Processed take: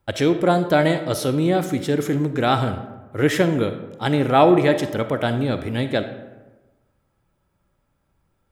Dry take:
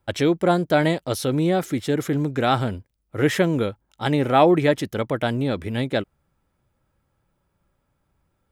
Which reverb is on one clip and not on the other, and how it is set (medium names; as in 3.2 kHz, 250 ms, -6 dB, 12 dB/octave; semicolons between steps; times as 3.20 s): algorithmic reverb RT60 1.2 s, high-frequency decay 0.5×, pre-delay 5 ms, DRR 9 dB; trim +1 dB